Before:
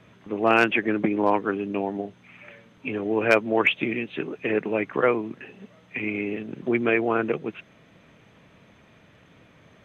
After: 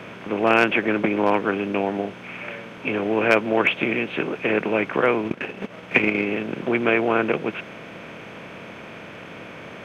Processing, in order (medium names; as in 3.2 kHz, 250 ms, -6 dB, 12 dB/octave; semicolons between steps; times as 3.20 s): spectral levelling over time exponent 0.6; 5.24–6.30 s: transient shaper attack +11 dB, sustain -8 dB; trim -1 dB